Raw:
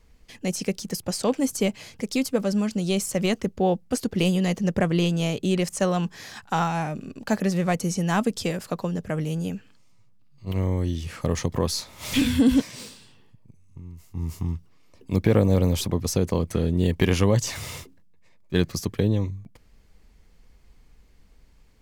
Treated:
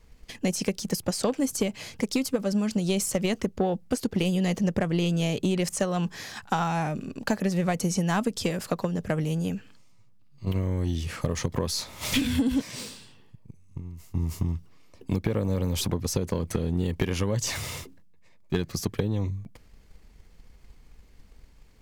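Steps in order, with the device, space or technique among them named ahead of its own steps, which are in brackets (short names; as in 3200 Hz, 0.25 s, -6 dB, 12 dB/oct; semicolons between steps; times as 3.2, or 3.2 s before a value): drum-bus smash (transient shaper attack +7 dB, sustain +3 dB; compressor 6:1, threshold -20 dBFS, peak gain reduction 11 dB; soft clip -14.5 dBFS, distortion -18 dB)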